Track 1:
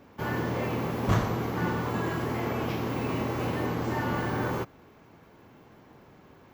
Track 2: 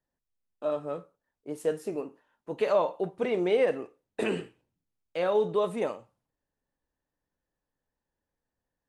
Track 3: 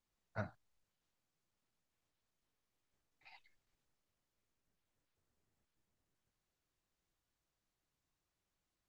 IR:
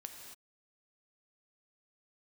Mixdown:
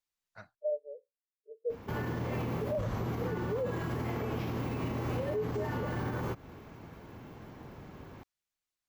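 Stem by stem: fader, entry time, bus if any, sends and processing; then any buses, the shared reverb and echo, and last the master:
+3.0 dB, 1.70 s, no send, compression, threshold -35 dBFS, peak gain reduction 15 dB; bass shelf 140 Hz +9 dB
-6.0 dB, 0.00 s, no send, spectral levelling over time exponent 0.4; high-pass 150 Hz; spectral contrast expander 4:1
-7.0 dB, 0.00 s, no send, tilt shelf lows -6.5 dB; auto duck -21 dB, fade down 0.20 s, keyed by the second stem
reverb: none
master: peak limiter -26 dBFS, peak gain reduction 12.5 dB

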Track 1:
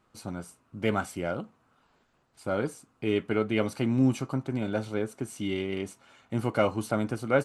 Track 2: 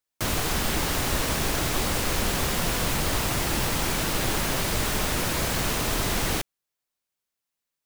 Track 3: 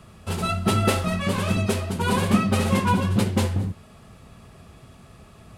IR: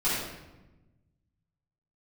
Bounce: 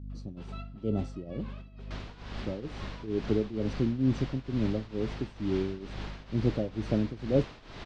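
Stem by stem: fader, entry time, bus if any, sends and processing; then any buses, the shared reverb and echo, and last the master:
+2.0 dB, 0.00 s, no send, Chebyshev band-stop 420–5700 Hz, order 2; peaking EQ 91 Hz +4 dB 3 oct; hum 50 Hz, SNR 11 dB
-14.0 dB, 1.70 s, no send, none
-10.0 dB, 0.10 s, no send, high-pass 190 Hz; compression 6:1, threshold -28 dBFS, peak gain reduction 12.5 dB; auto duck -7 dB, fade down 0.95 s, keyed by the first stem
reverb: none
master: low-pass 4.6 kHz 24 dB/octave; tremolo triangle 2.2 Hz, depth 85%

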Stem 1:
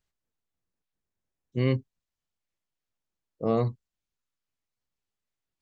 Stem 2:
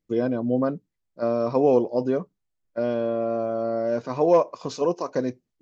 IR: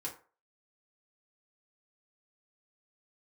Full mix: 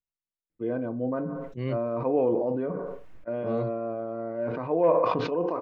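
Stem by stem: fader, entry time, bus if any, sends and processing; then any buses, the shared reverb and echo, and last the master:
-6.0 dB, 0.00 s, no send, treble shelf 4 kHz -9.5 dB; upward expansion 1.5:1, over -46 dBFS
-9.0 dB, 0.50 s, send -6 dB, low-pass 2.6 kHz 24 dB/octave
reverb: on, RT60 0.40 s, pre-delay 3 ms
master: decay stretcher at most 26 dB/s

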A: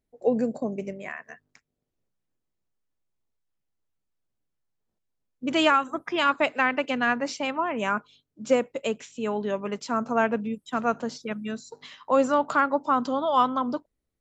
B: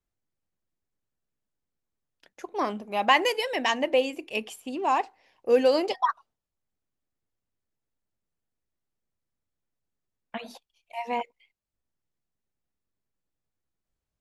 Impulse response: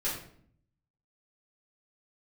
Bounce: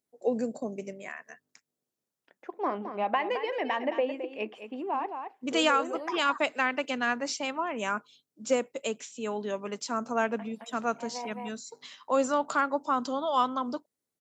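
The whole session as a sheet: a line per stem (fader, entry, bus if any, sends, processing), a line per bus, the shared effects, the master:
-4.5 dB, 0.00 s, no send, no echo send, tone controls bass +1 dB, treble +9 dB
-1.0 dB, 0.05 s, no send, echo send -10 dB, compression, threshold -22 dBFS, peak gain reduction 7.5 dB; vibrato 0.65 Hz 17 cents; low-pass 1.9 kHz 12 dB/octave; auto duck -8 dB, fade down 0.75 s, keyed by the first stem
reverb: none
echo: delay 217 ms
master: high-pass 200 Hz 12 dB/octave

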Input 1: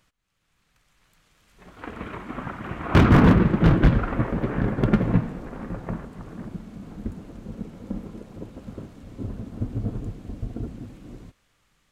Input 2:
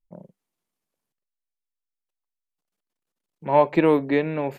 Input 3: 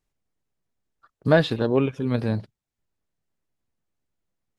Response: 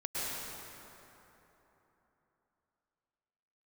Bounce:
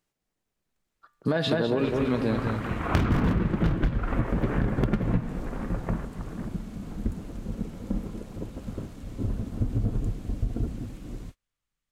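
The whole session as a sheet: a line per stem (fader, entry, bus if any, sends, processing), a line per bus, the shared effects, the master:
+0.5 dB, 0.00 s, no bus, no send, no echo send, treble shelf 4.7 kHz +6.5 dB; gate -46 dBFS, range -24 dB; bass shelf 64 Hz +9.5 dB
mute
+2.0 dB, 0.00 s, bus A, no send, echo send -8 dB, de-hum 131.4 Hz, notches 30
bus A: 0.0 dB, high-pass 150 Hz; peak limiter -12 dBFS, peak gain reduction 10.5 dB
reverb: none
echo: feedback delay 204 ms, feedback 43%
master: compression 10:1, threshold -20 dBFS, peak gain reduction 15 dB

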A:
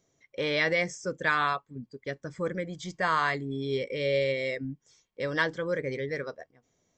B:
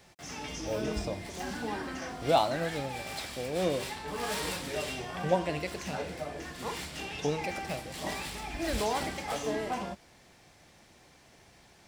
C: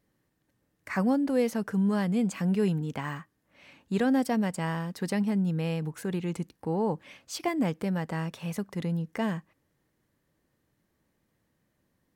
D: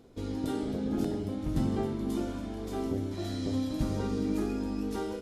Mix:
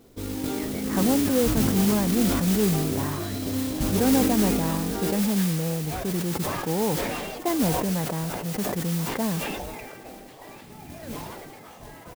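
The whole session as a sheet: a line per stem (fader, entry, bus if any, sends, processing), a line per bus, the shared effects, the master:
-19.5 dB, 0.00 s, no send, none
-7.5 dB, 2.35 s, no send, tilt EQ -4.5 dB/octave; spectral gate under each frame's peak -10 dB weak
+2.5 dB, 0.00 s, no send, low-pass 1.1 kHz 12 dB/octave
+2.0 dB, 0.00 s, no send, none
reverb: none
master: modulation noise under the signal 10 dB; decay stretcher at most 26 dB/s

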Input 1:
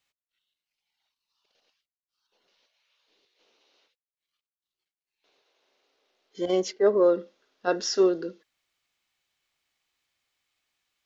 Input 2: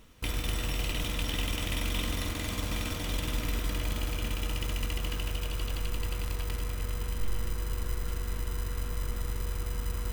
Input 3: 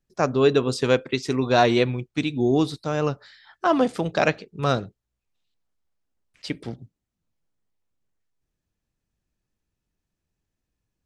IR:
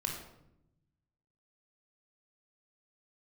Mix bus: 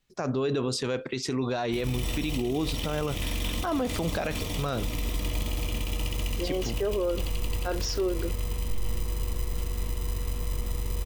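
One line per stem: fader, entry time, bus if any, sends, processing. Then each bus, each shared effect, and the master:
-0.5 dB, 0.00 s, no send, none
+3.0 dB, 1.50 s, no send, peaking EQ 1.5 kHz -14 dB 0.39 oct
+2.5 dB, 0.00 s, no send, none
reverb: none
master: peak limiter -20 dBFS, peak gain reduction 17 dB

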